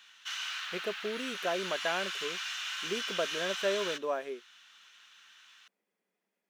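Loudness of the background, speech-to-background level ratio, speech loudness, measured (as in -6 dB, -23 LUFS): -36.0 LUFS, 0.0 dB, -36.0 LUFS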